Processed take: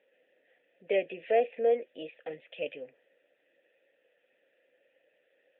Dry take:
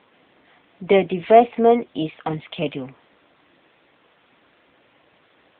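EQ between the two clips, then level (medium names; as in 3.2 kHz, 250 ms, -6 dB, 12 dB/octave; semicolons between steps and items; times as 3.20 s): dynamic bell 2.5 kHz, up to +5 dB, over -38 dBFS, Q 0.97; vowel filter e; -2.5 dB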